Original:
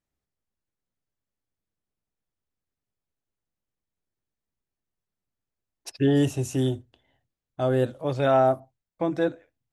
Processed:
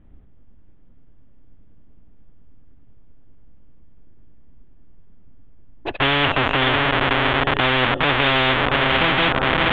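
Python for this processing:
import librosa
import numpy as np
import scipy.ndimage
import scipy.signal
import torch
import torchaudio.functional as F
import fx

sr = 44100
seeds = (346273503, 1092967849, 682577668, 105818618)

p1 = fx.tilt_eq(x, sr, slope=-4.0)
p2 = fx.echo_diffused(p1, sr, ms=608, feedback_pct=45, wet_db=-12)
p3 = fx.schmitt(p2, sr, flips_db=-29.5)
p4 = p2 + (p3 * librosa.db_to_amplitude(-7.5))
p5 = scipy.signal.sosfilt(scipy.signal.ellip(4, 1.0, 40, 3400.0, 'lowpass', fs=sr, output='sos'), p4)
p6 = fx.peak_eq(p5, sr, hz=260.0, db=6.5, octaves=0.55)
y = fx.spectral_comp(p6, sr, ratio=10.0)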